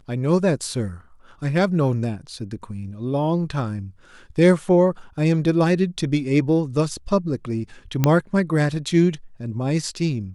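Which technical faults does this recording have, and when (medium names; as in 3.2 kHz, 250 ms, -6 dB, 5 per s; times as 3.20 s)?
8.04 s: pop -4 dBFS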